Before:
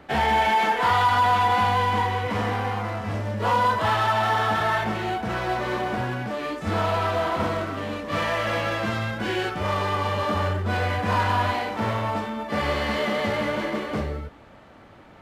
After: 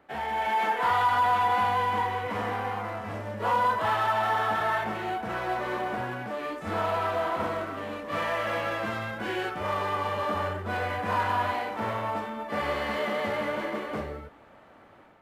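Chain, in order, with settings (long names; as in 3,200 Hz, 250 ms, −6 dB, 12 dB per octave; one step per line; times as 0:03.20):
parametric band 5,000 Hz −7.5 dB 1.9 octaves
automatic gain control gain up to 7.5 dB
low-shelf EQ 250 Hz −10.5 dB
level −9 dB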